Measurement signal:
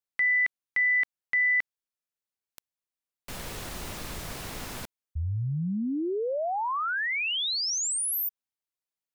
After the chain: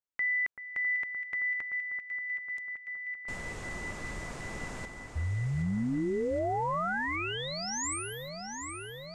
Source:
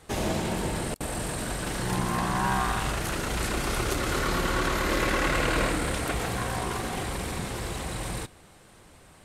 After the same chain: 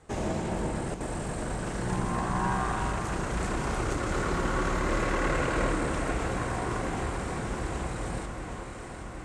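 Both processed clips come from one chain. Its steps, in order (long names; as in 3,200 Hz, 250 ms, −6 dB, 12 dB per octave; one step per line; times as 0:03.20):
Chebyshev low-pass filter 7,800 Hz, order 3
parametric band 3,900 Hz −8 dB 1.6 octaves
delay that swaps between a low-pass and a high-pass 384 ms, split 1,700 Hz, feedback 84%, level −7 dB
level −2 dB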